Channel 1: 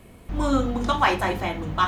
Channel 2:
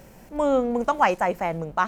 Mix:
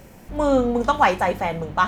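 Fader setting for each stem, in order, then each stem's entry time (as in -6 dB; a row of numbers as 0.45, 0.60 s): -4.0, +1.5 dB; 0.00, 0.00 s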